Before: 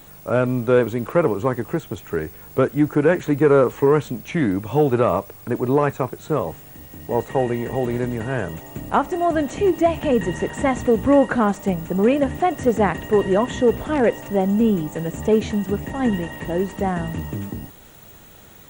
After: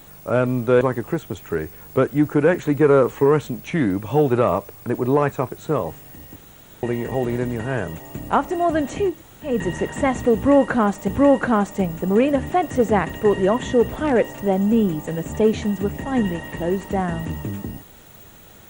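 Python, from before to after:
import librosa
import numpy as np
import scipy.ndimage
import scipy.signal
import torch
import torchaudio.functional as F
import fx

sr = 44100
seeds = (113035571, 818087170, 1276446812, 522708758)

y = fx.edit(x, sr, fx.cut(start_s=0.81, length_s=0.61),
    fx.room_tone_fill(start_s=6.97, length_s=0.47),
    fx.room_tone_fill(start_s=9.71, length_s=0.4, crossfade_s=0.24),
    fx.repeat(start_s=10.96, length_s=0.73, count=2), tone=tone)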